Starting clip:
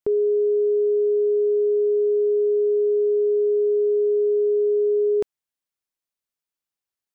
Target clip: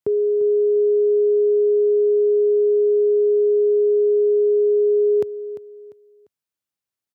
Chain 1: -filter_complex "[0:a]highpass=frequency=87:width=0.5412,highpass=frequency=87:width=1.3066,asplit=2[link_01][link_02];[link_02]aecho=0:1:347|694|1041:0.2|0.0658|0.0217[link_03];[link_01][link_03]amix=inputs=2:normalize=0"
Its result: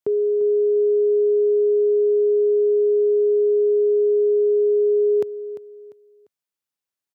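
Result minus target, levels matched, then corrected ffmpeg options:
125 Hz band −4.0 dB
-filter_complex "[0:a]highpass=frequency=87:width=0.5412,highpass=frequency=87:width=1.3066,lowshelf=frequency=130:gain=10,asplit=2[link_01][link_02];[link_02]aecho=0:1:347|694|1041:0.2|0.0658|0.0217[link_03];[link_01][link_03]amix=inputs=2:normalize=0"

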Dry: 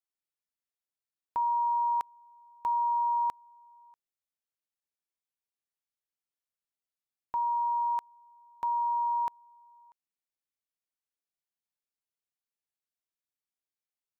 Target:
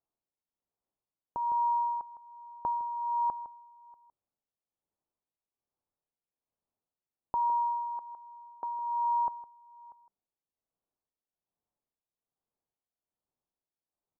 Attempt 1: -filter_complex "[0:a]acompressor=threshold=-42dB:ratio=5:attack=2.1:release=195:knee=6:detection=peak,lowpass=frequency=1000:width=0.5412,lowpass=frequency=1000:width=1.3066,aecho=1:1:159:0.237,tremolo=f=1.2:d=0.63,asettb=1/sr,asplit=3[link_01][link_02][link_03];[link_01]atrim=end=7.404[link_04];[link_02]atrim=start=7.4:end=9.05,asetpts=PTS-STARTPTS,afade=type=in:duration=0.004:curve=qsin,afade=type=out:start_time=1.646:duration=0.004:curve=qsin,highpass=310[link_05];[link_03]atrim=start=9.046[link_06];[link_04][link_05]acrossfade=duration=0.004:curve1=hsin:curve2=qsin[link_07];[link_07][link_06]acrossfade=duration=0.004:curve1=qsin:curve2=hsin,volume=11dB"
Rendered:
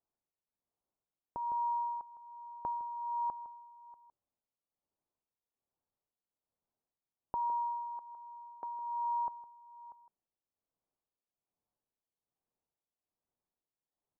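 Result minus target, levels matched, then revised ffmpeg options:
downward compressor: peak gain reduction +5.5 dB
-filter_complex "[0:a]acompressor=threshold=-35dB:ratio=5:attack=2.1:release=195:knee=6:detection=peak,lowpass=frequency=1000:width=0.5412,lowpass=frequency=1000:width=1.3066,aecho=1:1:159:0.237,tremolo=f=1.2:d=0.63,asettb=1/sr,asplit=3[link_01][link_02][link_03];[link_01]atrim=end=7.404[link_04];[link_02]atrim=start=7.4:end=9.05,asetpts=PTS-STARTPTS,afade=type=in:duration=0.004:curve=qsin,afade=type=out:start_time=1.646:duration=0.004:curve=qsin,highpass=310[link_05];[link_03]atrim=start=9.046[link_06];[link_04][link_05]acrossfade=duration=0.004:curve1=hsin:curve2=qsin[link_07];[link_07][link_06]acrossfade=duration=0.004:curve1=qsin:curve2=hsin,volume=11dB"

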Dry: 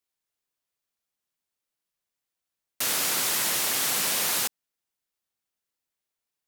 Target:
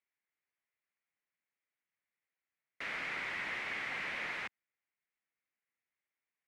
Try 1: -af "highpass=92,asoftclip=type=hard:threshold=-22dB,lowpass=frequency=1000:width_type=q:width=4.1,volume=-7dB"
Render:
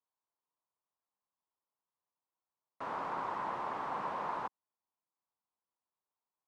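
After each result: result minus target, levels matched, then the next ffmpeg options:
1,000 Hz band +11.5 dB; hard clipping: distortion −8 dB
-af "highpass=92,asoftclip=type=hard:threshold=-22dB,lowpass=frequency=2100:width_type=q:width=4.1,volume=-7dB"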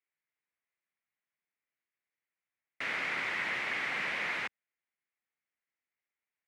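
hard clipping: distortion −8 dB
-af "highpass=92,asoftclip=type=hard:threshold=-30dB,lowpass=frequency=2100:width_type=q:width=4.1,volume=-7dB"

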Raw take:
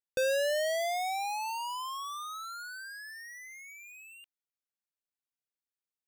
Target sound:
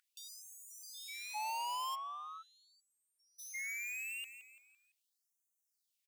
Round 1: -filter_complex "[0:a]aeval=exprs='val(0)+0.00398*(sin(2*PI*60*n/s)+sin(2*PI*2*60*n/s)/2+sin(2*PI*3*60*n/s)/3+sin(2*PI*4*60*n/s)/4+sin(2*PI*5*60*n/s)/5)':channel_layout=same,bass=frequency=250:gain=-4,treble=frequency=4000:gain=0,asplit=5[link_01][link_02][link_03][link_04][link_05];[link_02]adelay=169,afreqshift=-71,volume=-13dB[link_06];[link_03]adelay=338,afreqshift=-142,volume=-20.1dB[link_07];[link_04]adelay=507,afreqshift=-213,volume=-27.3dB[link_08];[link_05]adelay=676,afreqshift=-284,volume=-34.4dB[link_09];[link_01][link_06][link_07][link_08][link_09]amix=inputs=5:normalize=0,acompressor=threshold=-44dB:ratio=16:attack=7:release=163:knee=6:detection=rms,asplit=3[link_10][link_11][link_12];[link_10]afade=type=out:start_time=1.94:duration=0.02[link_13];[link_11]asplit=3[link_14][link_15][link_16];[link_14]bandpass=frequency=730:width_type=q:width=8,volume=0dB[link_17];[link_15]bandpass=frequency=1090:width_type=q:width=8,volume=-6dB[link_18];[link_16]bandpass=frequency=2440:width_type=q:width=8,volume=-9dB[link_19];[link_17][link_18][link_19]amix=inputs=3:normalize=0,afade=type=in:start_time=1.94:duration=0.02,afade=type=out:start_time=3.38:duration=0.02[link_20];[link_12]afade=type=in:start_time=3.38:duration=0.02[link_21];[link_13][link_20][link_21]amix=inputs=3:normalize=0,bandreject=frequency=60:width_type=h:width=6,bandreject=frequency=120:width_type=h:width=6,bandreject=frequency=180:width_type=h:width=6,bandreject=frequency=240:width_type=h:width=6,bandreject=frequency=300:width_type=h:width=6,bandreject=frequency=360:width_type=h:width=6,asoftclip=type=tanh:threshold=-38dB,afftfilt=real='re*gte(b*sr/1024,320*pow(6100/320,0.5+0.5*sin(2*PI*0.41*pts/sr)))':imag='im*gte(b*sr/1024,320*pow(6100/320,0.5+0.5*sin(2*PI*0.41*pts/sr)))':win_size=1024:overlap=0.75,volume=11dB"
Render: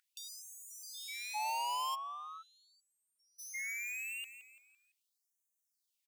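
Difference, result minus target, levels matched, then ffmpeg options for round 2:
soft clipping: distortion −12 dB
-filter_complex "[0:a]aeval=exprs='val(0)+0.00398*(sin(2*PI*60*n/s)+sin(2*PI*2*60*n/s)/2+sin(2*PI*3*60*n/s)/3+sin(2*PI*4*60*n/s)/4+sin(2*PI*5*60*n/s)/5)':channel_layout=same,bass=frequency=250:gain=-4,treble=frequency=4000:gain=0,asplit=5[link_01][link_02][link_03][link_04][link_05];[link_02]adelay=169,afreqshift=-71,volume=-13dB[link_06];[link_03]adelay=338,afreqshift=-142,volume=-20.1dB[link_07];[link_04]adelay=507,afreqshift=-213,volume=-27.3dB[link_08];[link_05]adelay=676,afreqshift=-284,volume=-34.4dB[link_09];[link_01][link_06][link_07][link_08][link_09]amix=inputs=5:normalize=0,acompressor=threshold=-44dB:ratio=16:attack=7:release=163:knee=6:detection=rms,asplit=3[link_10][link_11][link_12];[link_10]afade=type=out:start_time=1.94:duration=0.02[link_13];[link_11]asplit=3[link_14][link_15][link_16];[link_14]bandpass=frequency=730:width_type=q:width=8,volume=0dB[link_17];[link_15]bandpass=frequency=1090:width_type=q:width=8,volume=-6dB[link_18];[link_16]bandpass=frequency=2440:width_type=q:width=8,volume=-9dB[link_19];[link_17][link_18][link_19]amix=inputs=3:normalize=0,afade=type=in:start_time=1.94:duration=0.02,afade=type=out:start_time=3.38:duration=0.02[link_20];[link_12]afade=type=in:start_time=3.38:duration=0.02[link_21];[link_13][link_20][link_21]amix=inputs=3:normalize=0,bandreject=frequency=60:width_type=h:width=6,bandreject=frequency=120:width_type=h:width=6,bandreject=frequency=180:width_type=h:width=6,bandreject=frequency=240:width_type=h:width=6,bandreject=frequency=300:width_type=h:width=6,bandreject=frequency=360:width_type=h:width=6,asoftclip=type=tanh:threshold=-47dB,afftfilt=real='re*gte(b*sr/1024,320*pow(6100/320,0.5+0.5*sin(2*PI*0.41*pts/sr)))':imag='im*gte(b*sr/1024,320*pow(6100/320,0.5+0.5*sin(2*PI*0.41*pts/sr)))':win_size=1024:overlap=0.75,volume=11dB"

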